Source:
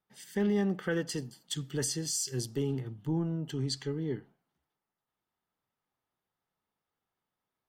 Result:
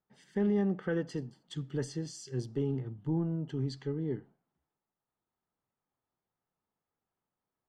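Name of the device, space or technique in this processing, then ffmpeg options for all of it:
through cloth: -af "lowpass=7100,highshelf=frequency=2200:gain=-14"

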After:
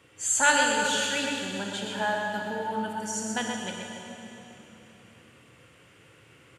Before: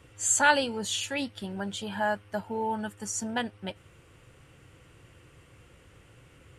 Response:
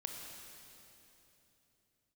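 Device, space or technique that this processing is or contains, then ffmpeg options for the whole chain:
PA in a hall: -filter_complex "[0:a]highpass=150,equalizer=frequency=2600:width_type=o:width=2.2:gain=3.5,aecho=1:1:127:0.473[link_01];[1:a]atrim=start_sample=2205[link_02];[link_01][link_02]afir=irnorm=-1:irlink=0,volume=1dB"

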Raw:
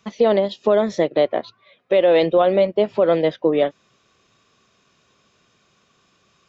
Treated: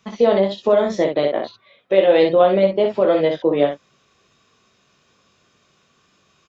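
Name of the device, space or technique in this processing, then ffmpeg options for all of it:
slapback doubling: -filter_complex "[0:a]asplit=3[link_01][link_02][link_03];[link_02]adelay=21,volume=-5dB[link_04];[link_03]adelay=62,volume=-5dB[link_05];[link_01][link_04][link_05]amix=inputs=3:normalize=0,volume=-1dB"

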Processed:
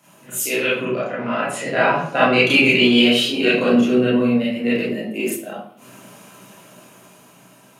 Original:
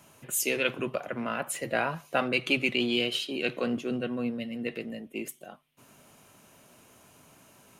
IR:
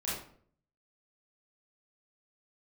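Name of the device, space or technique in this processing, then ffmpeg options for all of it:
far laptop microphone: -filter_complex "[1:a]atrim=start_sample=2205[link_01];[0:a][link_01]afir=irnorm=-1:irlink=0,highpass=frequency=130:width=0.5412,highpass=frequency=130:width=1.3066,dynaudnorm=framelen=350:gausssize=9:maxgain=7dB,asettb=1/sr,asplit=3[link_02][link_03][link_04];[link_02]atrim=end=0.854[link_05];[link_03]atrim=start=0.85:end=2.47,asetpts=PTS-STARTPTS,afade=type=in:duration=0.004:curve=qsin,afade=type=out:start_time=1.616:duration=0.004:curve=qsin,lowpass=6700[link_06];[link_04]atrim=start=2.466[link_07];[link_05][link_06]acrossfade=duration=0.004:curve1=hsin:curve2=qsin[link_08];[link_08][link_07]acrossfade=duration=0.004:curve1=qsin:curve2=hsin,volume=3dB"

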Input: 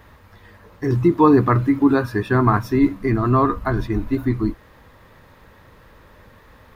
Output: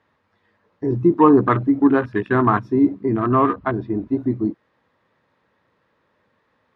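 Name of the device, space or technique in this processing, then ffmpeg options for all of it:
over-cleaned archive recording: -filter_complex "[0:a]highpass=160,lowpass=5000,afwtdn=0.0398,asettb=1/sr,asplit=3[link_01][link_02][link_03];[link_01]atrim=end=3.014[link_04];[link_02]atrim=start=3.01:end=4.05,asetpts=PTS-STARTPTS,afade=type=in:duration=0.004:curve=qsin,afade=type=out:start_time=1.036:duration=0.004:curve=qsin,lowpass=frequency=5000:width=0.5412,lowpass=frequency=5000:width=1.3066[link_05];[link_03]atrim=start=4.046[link_06];[link_04][link_05]acrossfade=duration=0.004:curve1=hsin:curve2=qsin[link_07];[link_07][link_06]acrossfade=duration=0.004:curve1=qsin:curve2=hsin,volume=1dB"

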